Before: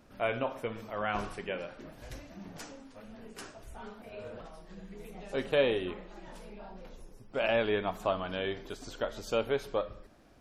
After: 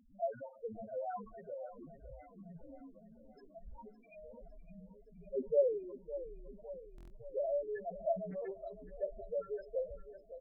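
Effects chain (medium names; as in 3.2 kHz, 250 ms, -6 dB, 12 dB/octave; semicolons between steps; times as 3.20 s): harmonic tremolo 1.1 Hz, depth 70%, crossover 1.3 kHz; feedback comb 170 Hz, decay 0.31 s, harmonics all, mix 50%; loudest bins only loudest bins 2; feedback delay 559 ms, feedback 57%, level -13.5 dB; buffer glitch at 6.96 s, samples 1024, times 5; 8.29–8.97 s: loudspeaker Doppler distortion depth 0.22 ms; trim +7 dB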